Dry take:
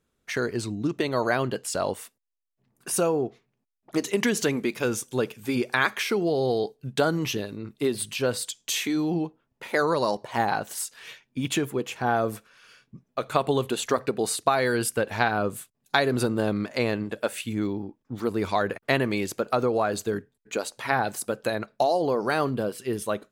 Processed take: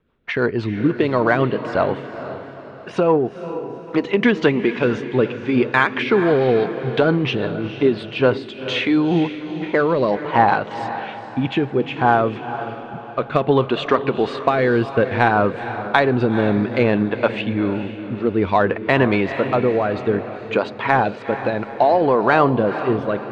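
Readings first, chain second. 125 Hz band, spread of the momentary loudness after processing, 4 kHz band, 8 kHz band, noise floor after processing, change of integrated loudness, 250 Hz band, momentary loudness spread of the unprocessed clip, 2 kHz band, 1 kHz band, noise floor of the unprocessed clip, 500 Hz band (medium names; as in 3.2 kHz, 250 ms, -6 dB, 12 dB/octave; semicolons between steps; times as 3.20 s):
+8.5 dB, 11 LU, +2.5 dB, under -20 dB, -35 dBFS, +7.5 dB, +8.5 dB, 8 LU, +7.0 dB, +8.5 dB, -77 dBFS, +8.0 dB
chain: low-pass 3.2 kHz 24 dB/octave; peaking EQ 970 Hz +5.5 dB 0.47 oct; in parallel at -11.5 dB: saturation -21.5 dBFS, distortion -10 dB; on the sum: rotary cabinet horn 6 Hz, later 0.6 Hz, at 7.72 s; on a send: echo that smears into a reverb 460 ms, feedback 45%, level -11 dB; on the sum: loudness maximiser +9 dB; trim -1 dB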